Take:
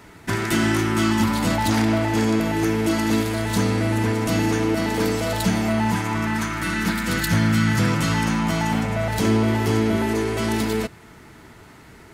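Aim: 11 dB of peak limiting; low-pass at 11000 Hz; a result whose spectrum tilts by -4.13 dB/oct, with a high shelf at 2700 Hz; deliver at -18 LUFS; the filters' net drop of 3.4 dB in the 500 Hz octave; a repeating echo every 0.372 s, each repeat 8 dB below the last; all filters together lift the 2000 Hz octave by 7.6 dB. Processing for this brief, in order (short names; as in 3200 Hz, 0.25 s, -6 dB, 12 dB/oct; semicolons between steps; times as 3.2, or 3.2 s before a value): LPF 11000 Hz; bell 500 Hz -5.5 dB; bell 2000 Hz +7 dB; high shelf 2700 Hz +6 dB; limiter -16.5 dBFS; feedback echo 0.372 s, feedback 40%, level -8 dB; gain +6 dB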